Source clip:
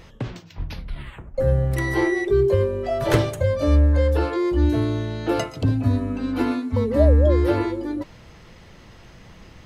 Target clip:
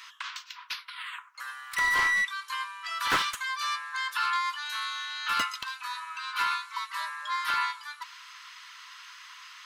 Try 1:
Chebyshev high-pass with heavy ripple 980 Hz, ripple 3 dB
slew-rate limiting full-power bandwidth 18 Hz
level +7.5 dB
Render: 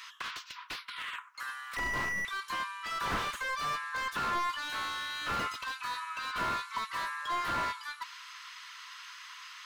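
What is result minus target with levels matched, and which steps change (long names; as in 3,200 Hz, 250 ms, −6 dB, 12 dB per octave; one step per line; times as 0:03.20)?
slew-rate limiting: distortion +12 dB
change: slew-rate limiting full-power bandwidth 70.5 Hz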